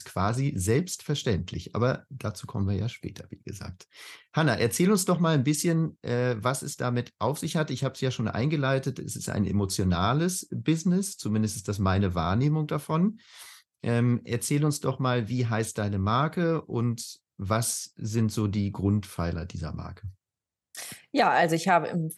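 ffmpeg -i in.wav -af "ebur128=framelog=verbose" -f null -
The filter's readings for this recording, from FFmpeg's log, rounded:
Integrated loudness:
  I:         -27.3 LUFS
  Threshold: -37.8 LUFS
Loudness range:
  LRA:         4.0 LU
  Threshold: -48.0 LUFS
  LRA low:   -30.2 LUFS
  LRA high:  -26.2 LUFS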